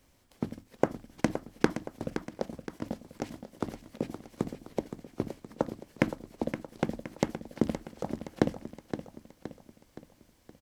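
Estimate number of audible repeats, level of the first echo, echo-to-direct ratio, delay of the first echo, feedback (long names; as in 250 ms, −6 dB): 5, −10.0 dB, −9.0 dB, 519 ms, 49%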